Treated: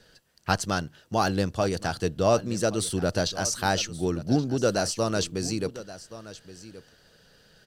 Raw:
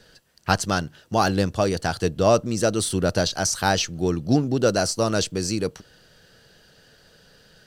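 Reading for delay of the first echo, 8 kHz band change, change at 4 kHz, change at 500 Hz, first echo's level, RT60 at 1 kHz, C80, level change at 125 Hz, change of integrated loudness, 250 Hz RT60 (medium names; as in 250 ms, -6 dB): 1125 ms, -4.0 dB, -4.0 dB, -4.0 dB, -16.0 dB, no reverb, no reverb, -4.0 dB, -4.0 dB, no reverb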